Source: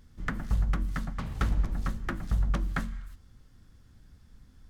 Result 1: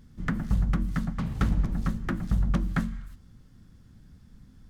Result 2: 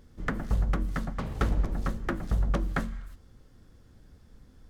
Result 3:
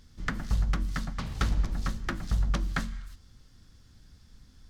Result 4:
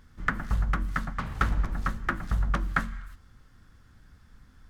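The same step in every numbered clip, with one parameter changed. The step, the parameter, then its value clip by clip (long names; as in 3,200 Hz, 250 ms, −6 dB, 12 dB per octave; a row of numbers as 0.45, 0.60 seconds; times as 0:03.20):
parametric band, centre frequency: 180, 470, 4,900, 1,400 Hertz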